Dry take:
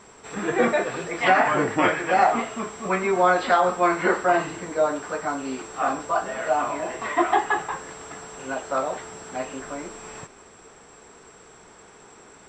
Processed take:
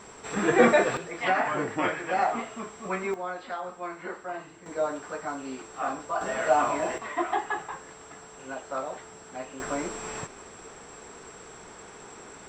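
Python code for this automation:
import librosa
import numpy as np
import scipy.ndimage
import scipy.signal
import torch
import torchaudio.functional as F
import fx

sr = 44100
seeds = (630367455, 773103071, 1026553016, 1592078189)

y = fx.gain(x, sr, db=fx.steps((0.0, 2.0), (0.97, -7.0), (3.14, -16.0), (4.66, -6.5), (6.21, 0.5), (6.98, -7.5), (9.6, 3.0)))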